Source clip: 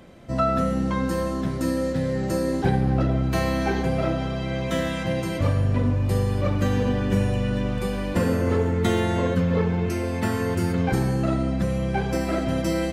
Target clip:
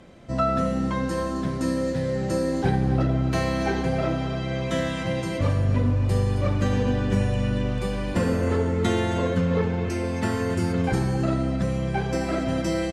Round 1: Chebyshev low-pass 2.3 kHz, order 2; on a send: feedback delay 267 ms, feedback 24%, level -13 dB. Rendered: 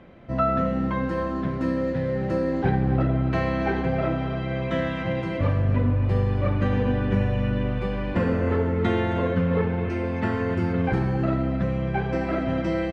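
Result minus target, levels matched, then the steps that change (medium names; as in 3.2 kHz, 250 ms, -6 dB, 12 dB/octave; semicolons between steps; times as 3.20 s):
8 kHz band -19.5 dB
change: Chebyshev low-pass 8 kHz, order 2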